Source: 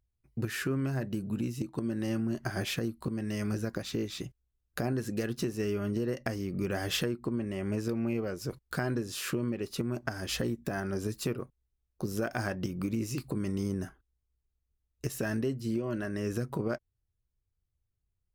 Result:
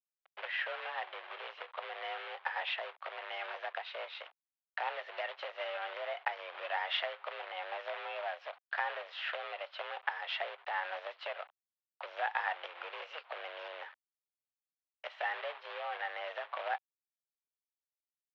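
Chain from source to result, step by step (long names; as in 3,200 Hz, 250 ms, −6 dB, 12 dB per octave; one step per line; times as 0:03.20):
log-companded quantiser 4 bits
single-sideband voice off tune +170 Hz 530–3,200 Hz
level +1.5 dB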